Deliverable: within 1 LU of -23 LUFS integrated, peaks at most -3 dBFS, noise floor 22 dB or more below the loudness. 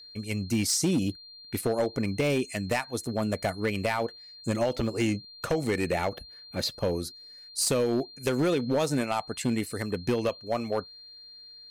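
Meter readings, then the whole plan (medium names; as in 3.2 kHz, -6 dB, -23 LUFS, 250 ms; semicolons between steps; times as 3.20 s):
clipped samples 1.3%; clipping level -19.5 dBFS; steady tone 4.2 kHz; tone level -46 dBFS; loudness -29.0 LUFS; peak level -19.5 dBFS; loudness target -23.0 LUFS
-> clip repair -19.5 dBFS; band-stop 4.2 kHz, Q 30; trim +6 dB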